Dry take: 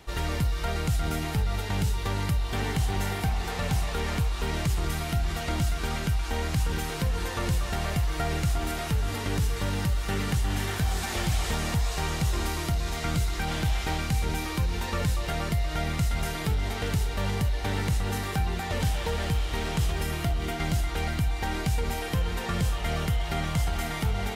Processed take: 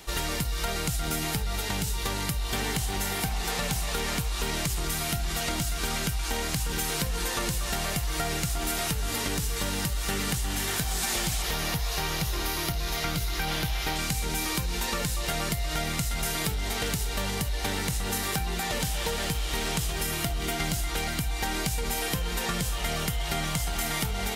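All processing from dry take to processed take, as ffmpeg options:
-filter_complex "[0:a]asettb=1/sr,asplit=3[s0][s1][s2];[s0]atrim=end=11.424[s3];[s1]atrim=start=11.42:end=13.96,asetpts=PTS-STARTPTS,afade=t=in:d=0.004:c=qsin,afade=t=out:st=2.536:d=0.004:c=qsin,equalizer=f=8000:w=2.2:g=-11,bandreject=f=220:w=5.1[s4];[s2]atrim=start=13.956[s5];[s3][s4]acrossfade=d=0.004:c1=hsin:c2=qsin[s6];[s6][s5]acrossfade=d=0.004:c1=qsin:c2=hsin,highshelf=f=3900:g=11.5,acompressor=threshold=0.0501:ratio=6,equalizer=f=86:w=3.9:g=-15,volume=1.26"

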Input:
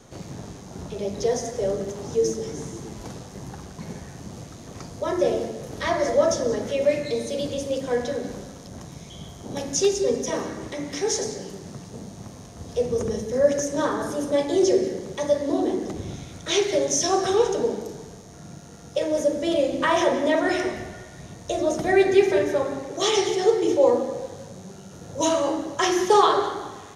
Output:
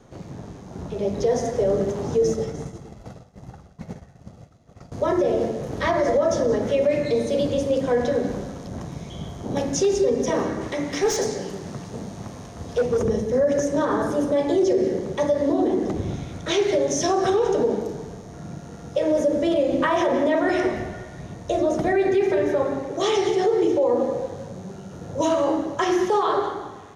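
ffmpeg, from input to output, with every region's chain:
-filter_complex "[0:a]asettb=1/sr,asplit=3[s0][s1][s2];[s0]atrim=end=2.224[s3];[s1]atrim=start=2.22:end=4.92,asetpts=PTS-STARTPTS,afade=t=in:d=0.004:c=qsin,afade=t=out:st=2.696:d=0.004:c=qsin,agate=range=0.0224:threshold=0.0355:ratio=3:release=100:detection=peak,aecho=1:1:1.5:0.39,atrim=end_sample=119070[s4];[s2]atrim=start=4.916[s5];[s3][s4]acrossfade=d=0.004:c1=hsin:c2=qsin[s6];[s6][s5]acrossfade=d=0.004:c1=qsin:c2=hsin,asettb=1/sr,asplit=3[s7][s8][s9];[s7]atrim=end=10.614[s10];[s8]atrim=start=10.61:end=13.03,asetpts=PTS-STARTPTS,afade=t=in:d=0.004:c=qsin,afade=t=out:st=2.416:d=0.004:c=qsin,tiltshelf=f=720:g=-3,asoftclip=type=hard:threshold=0.0891[s11];[s9]atrim=start=13.026[s12];[s10][s11]acrossfade=d=0.004:c1=hsin:c2=qsin[s13];[s13][s12]acrossfade=d=0.004:c1=qsin:c2=hsin,highshelf=f=3100:g=-11.5,dynaudnorm=f=230:g=9:m=2.24,alimiter=limit=0.237:level=0:latency=1:release=66"

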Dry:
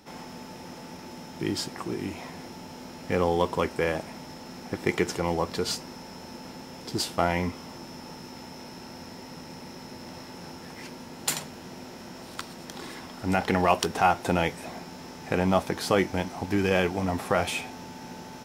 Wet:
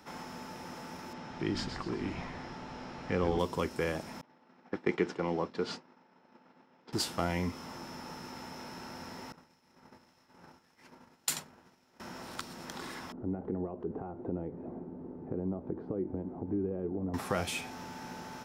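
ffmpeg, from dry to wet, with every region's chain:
-filter_complex "[0:a]asettb=1/sr,asplit=3[s0][s1][s2];[s0]atrim=end=1.134[s3];[s1]atrim=start=1.13:end=3.39,asetpts=PTS-STARTPTS,afade=t=in:d=0.004:c=qsin,afade=t=out:st=2.256:d=0.004:c=qsin,lowpass=4500,asplit=6[s4][s5][s6][s7][s8][s9];[s5]adelay=124,afreqshift=-120,volume=0.398[s10];[s6]adelay=248,afreqshift=-240,volume=0.172[s11];[s7]adelay=372,afreqshift=-360,volume=0.0733[s12];[s8]adelay=496,afreqshift=-480,volume=0.0316[s13];[s9]adelay=620,afreqshift=-600,volume=0.0136[s14];[s4][s10][s11][s12][s13][s14]amix=inputs=6:normalize=0,atrim=end_sample=99666[s15];[s2]atrim=start=3.386[s16];[s3][s15]acrossfade=d=0.004:c1=hsin:c2=qsin[s17];[s17][s16]acrossfade=d=0.004:c1=qsin:c2=hsin,asettb=1/sr,asplit=3[s18][s19][s20];[s18]atrim=end=4.214[s21];[s19]atrim=start=4.21:end=6.93,asetpts=PTS-STARTPTS,afade=t=in:d=0.004:c=qsin,afade=t=out:st=2.716:d=0.004:c=qsin,agate=range=0.0224:threshold=0.0282:ratio=3:release=100:detection=peak,highpass=200,lowpass=3200,lowshelf=f=410:g=3.5[s22];[s20]atrim=start=6.926[s23];[s21][s22]acrossfade=d=0.004:c1=hsin:c2=qsin[s24];[s24][s23]acrossfade=d=0.004:c1=qsin:c2=hsin,asettb=1/sr,asplit=3[s25][s26][s27];[s25]atrim=end=9.324[s28];[s26]atrim=start=9.32:end=12,asetpts=PTS-STARTPTS,afade=t=in:d=0.004:c=qsin,afade=t=out:st=2.676:d=0.004:c=qsin,acrossover=split=2200[s29][s30];[s29]aeval=exprs='val(0)*(1-0.5/2+0.5/2*cos(2*PI*1.8*n/s))':c=same[s31];[s30]aeval=exprs='val(0)*(1-0.5/2-0.5/2*cos(2*PI*1.8*n/s))':c=same[s32];[s31][s32]amix=inputs=2:normalize=0,agate=range=0.0224:threshold=0.0178:ratio=3:release=100:detection=peak[s33];[s27]atrim=start=11.996[s34];[s28][s33]acrossfade=d=0.004:c1=hsin:c2=qsin[s35];[s35][s34]acrossfade=d=0.004:c1=qsin:c2=hsin,asettb=1/sr,asplit=3[s36][s37][s38];[s36]atrim=end=13.124[s39];[s37]atrim=start=13.12:end=17.14,asetpts=PTS-STARTPTS,afade=t=in:d=0.004:c=qsin,afade=t=out:st=4.016:d=0.004:c=qsin,acompressor=threshold=0.0316:ratio=3:attack=3.2:release=140:knee=1:detection=peak,lowpass=f=370:t=q:w=1.9[s40];[s38]atrim=start=17.136[s41];[s39][s40]acrossfade=d=0.004:c1=hsin:c2=qsin[s42];[s42][s41]acrossfade=d=0.004:c1=qsin:c2=hsin,equalizer=f=1300:t=o:w=1.3:g=7.5,acrossover=split=470|3000[s43][s44][s45];[s44]acompressor=threshold=0.00891:ratio=2[s46];[s43][s46][s45]amix=inputs=3:normalize=0,volume=0.631"

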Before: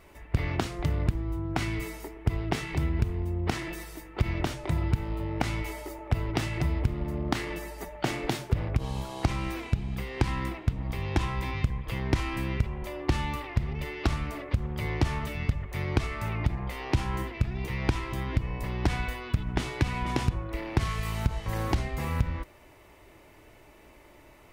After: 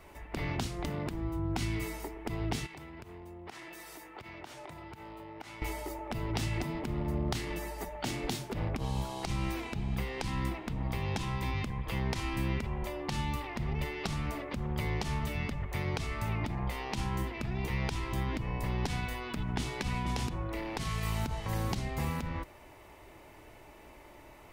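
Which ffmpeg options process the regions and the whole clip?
-filter_complex "[0:a]asettb=1/sr,asplit=3[s0][s1][s2];[s0]atrim=end=2.664[s3];[s1]atrim=start=2.66:end=5.62,asetpts=PTS-STARTPTS,afade=t=in:d=0.004:c=qsin,afade=t=out:st=2.956:d=0.004:c=qsin,highpass=f=460:p=1,acompressor=threshold=0.00631:ratio=6:attack=3.2:release=140:knee=1:detection=peak[s4];[s2]atrim=start=5.616[s5];[s3][s4]acrossfade=d=0.004:c1=hsin:c2=qsin[s6];[s6][s5]acrossfade=d=0.004:c1=qsin:c2=hsin,afftfilt=real='re*lt(hypot(re,im),0.316)':imag='im*lt(hypot(re,im),0.316)':win_size=1024:overlap=0.75,equalizer=f=840:w=2.4:g=4,acrossover=split=320|3000[s7][s8][s9];[s8]acompressor=threshold=0.0126:ratio=6[s10];[s7][s10][s9]amix=inputs=3:normalize=0"

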